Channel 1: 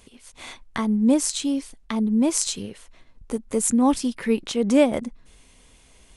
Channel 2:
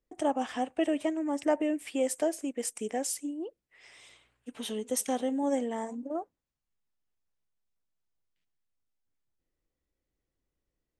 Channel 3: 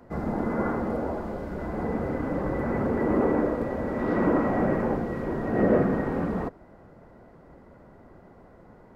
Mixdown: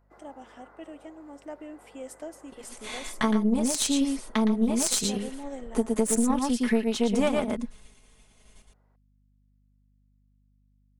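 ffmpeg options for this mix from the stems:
-filter_complex "[0:a]agate=range=0.0224:threshold=0.00562:ratio=3:detection=peak,aecho=1:1:4.7:0.8,adelay=2450,volume=1.33,asplit=2[s0][s1];[s1]volume=0.631[s2];[1:a]dynaudnorm=f=430:g=9:m=2,aeval=exprs='val(0)+0.00398*(sin(2*PI*50*n/s)+sin(2*PI*2*50*n/s)/2+sin(2*PI*3*50*n/s)/3+sin(2*PI*4*50*n/s)/4+sin(2*PI*5*50*n/s)/5)':c=same,volume=0.237[s3];[2:a]highpass=630,acompressor=threshold=0.02:ratio=6,volume=0.211[s4];[s2]aecho=0:1:115:1[s5];[s0][s3][s4][s5]amix=inputs=4:normalize=0,aeval=exprs='1*(cos(1*acos(clip(val(0)/1,-1,1)))-cos(1*PI/2))+0.1*(cos(3*acos(clip(val(0)/1,-1,1)))-cos(3*PI/2))+0.112*(cos(4*acos(clip(val(0)/1,-1,1)))-cos(4*PI/2))':c=same,acompressor=threshold=0.112:ratio=12"

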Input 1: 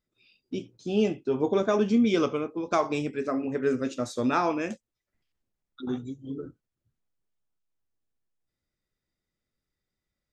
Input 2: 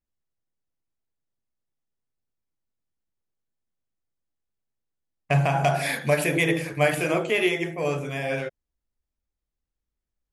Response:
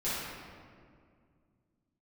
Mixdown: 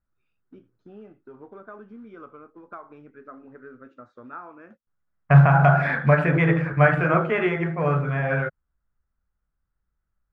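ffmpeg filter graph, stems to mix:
-filter_complex "[0:a]acompressor=threshold=0.0178:ratio=2.5,volume=0.266[s0];[1:a]lowshelf=f=220:t=q:w=1.5:g=6.5,volume=1.12,asplit=3[s1][s2][s3];[s1]atrim=end=3.88,asetpts=PTS-STARTPTS,afade=t=out:st=3.876:d=0.004:c=hsin[s4];[s2]atrim=start=3.88:end=4.87,asetpts=PTS-STARTPTS,volume=0[s5];[s3]atrim=start=4.87,asetpts=PTS-STARTPTS,afade=t=in:d=0.004:c=hsin[s6];[s4][s5][s6]concat=n=3:v=0:a=1[s7];[s0][s7]amix=inputs=2:normalize=0,acrusher=bits=6:mode=log:mix=0:aa=0.000001,lowpass=f=1400:t=q:w=4"

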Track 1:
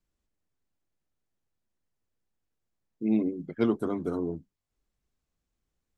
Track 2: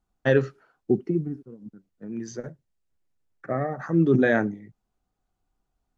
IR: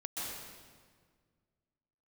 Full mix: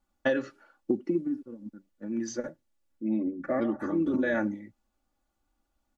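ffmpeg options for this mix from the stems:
-filter_complex "[0:a]highshelf=f=3000:g=-11.5,volume=0.562,asplit=2[s0][s1];[1:a]lowshelf=f=130:g=-9,volume=1.06[s2];[s1]apad=whole_len=263606[s3];[s2][s3]sidechaincompress=threshold=0.00891:ratio=3:attack=16:release=214[s4];[s0][s4]amix=inputs=2:normalize=0,aecho=1:1:3.5:0.84,acompressor=threshold=0.0708:ratio=6"

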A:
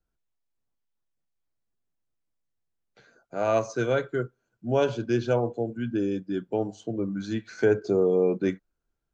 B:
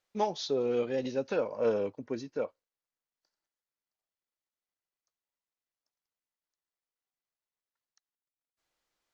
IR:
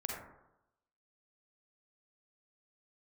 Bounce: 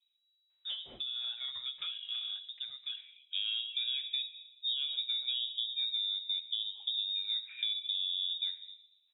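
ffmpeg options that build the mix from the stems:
-filter_complex "[0:a]lowpass=1200,alimiter=limit=0.0891:level=0:latency=1:release=139,volume=1.12,asplit=2[s0][s1];[s1]volume=0.2[s2];[1:a]acompressor=threshold=0.0224:ratio=4,adelay=500,volume=0.531,asplit=2[s3][s4];[s4]volume=0.299[s5];[2:a]atrim=start_sample=2205[s6];[s2][s5]amix=inputs=2:normalize=0[s7];[s7][s6]afir=irnorm=-1:irlink=0[s8];[s0][s3][s8]amix=inputs=3:normalize=0,lowpass=f=3300:t=q:w=0.5098,lowpass=f=3300:t=q:w=0.6013,lowpass=f=3300:t=q:w=0.9,lowpass=f=3300:t=q:w=2.563,afreqshift=-3900,acompressor=threshold=0.0251:ratio=6"

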